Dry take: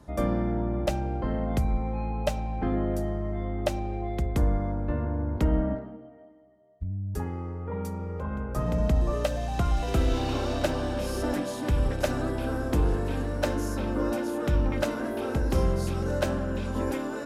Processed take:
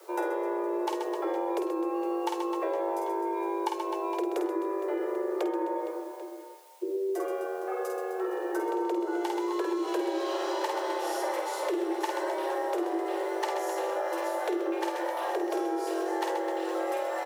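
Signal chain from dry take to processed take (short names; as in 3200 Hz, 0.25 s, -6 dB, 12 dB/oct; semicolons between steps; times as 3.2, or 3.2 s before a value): 3.07–3.78 comb 1.5 ms, depth 53%; on a send: reverse bouncing-ball echo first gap 50 ms, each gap 1.6×, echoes 5; on the sum: requantised 10-bit, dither triangular; compressor, threshold -27 dBFS, peak gain reduction 10.5 dB; frequency shift +290 Hz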